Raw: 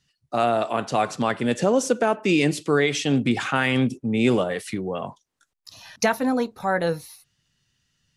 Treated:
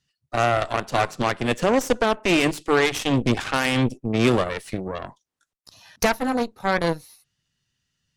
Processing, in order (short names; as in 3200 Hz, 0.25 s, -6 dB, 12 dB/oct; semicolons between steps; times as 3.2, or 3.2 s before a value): added harmonics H 6 -15 dB, 7 -24 dB, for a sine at -8 dBFS